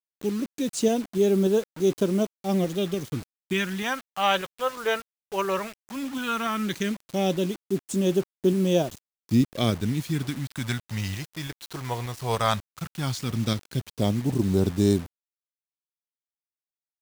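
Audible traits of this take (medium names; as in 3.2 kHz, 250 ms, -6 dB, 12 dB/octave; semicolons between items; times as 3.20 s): tremolo saw up 3.4 Hz, depth 30%; phasing stages 2, 0.15 Hz, lowest notch 230–1900 Hz; a quantiser's noise floor 8-bit, dither none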